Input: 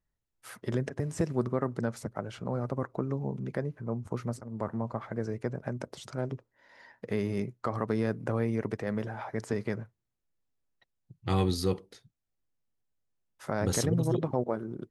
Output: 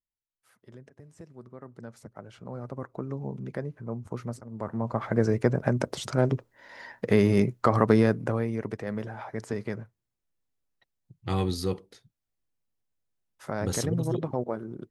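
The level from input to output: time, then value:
0:01.38 −18 dB
0:01.99 −9.5 dB
0:03.28 −1 dB
0:04.61 −1 dB
0:05.15 +10 dB
0:07.94 +10 dB
0:08.49 −0.5 dB

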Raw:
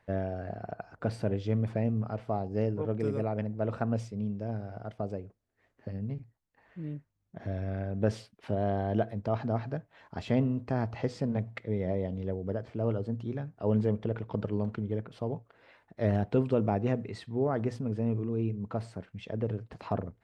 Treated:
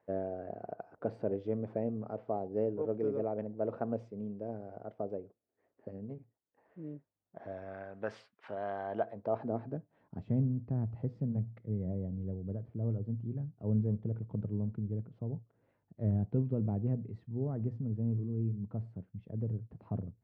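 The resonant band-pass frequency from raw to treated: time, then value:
resonant band-pass, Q 1.1
0:06.96 450 Hz
0:07.94 1,300 Hz
0:08.79 1,300 Hz
0:09.57 350 Hz
0:10.37 130 Hz

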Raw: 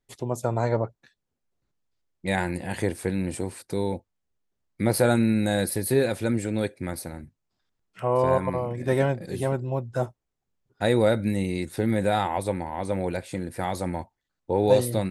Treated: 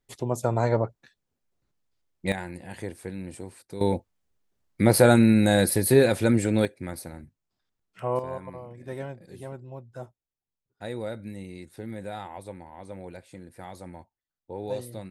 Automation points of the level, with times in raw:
+1 dB
from 0:02.32 −9 dB
from 0:03.81 +4 dB
from 0:06.65 −3.5 dB
from 0:08.19 −13 dB

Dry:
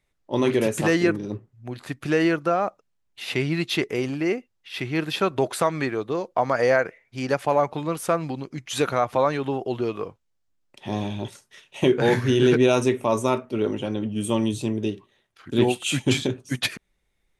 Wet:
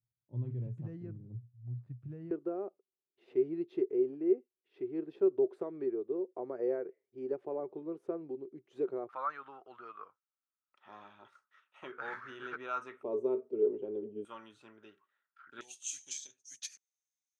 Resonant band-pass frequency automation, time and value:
resonant band-pass, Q 9.7
120 Hz
from 0:02.31 380 Hz
from 0:09.09 1,300 Hz
from 0:13.03 410 Hz
from 0:14.25 1,400 Hz
from 0:15.61 6,300 Hz

